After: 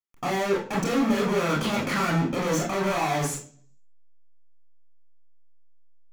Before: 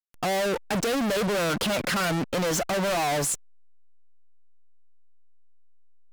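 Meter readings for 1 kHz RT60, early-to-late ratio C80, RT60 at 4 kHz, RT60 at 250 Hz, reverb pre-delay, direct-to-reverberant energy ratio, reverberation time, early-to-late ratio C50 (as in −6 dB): 0.40 s, 12.5 dB, 0.45 s, 0.65 s, 23 ms, −2.5 dB, 0.45 s, 7.5 dB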